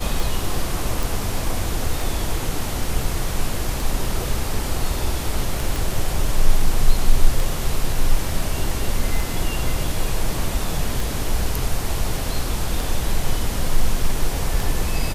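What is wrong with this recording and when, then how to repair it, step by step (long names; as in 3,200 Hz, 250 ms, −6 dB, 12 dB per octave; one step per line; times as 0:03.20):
scratch tick 33 1/3 rpm
0:01.03: click
0:05.76: click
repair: click removal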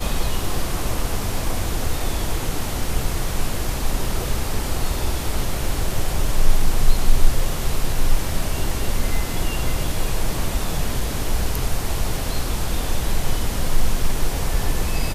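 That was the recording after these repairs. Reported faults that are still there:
none of them is left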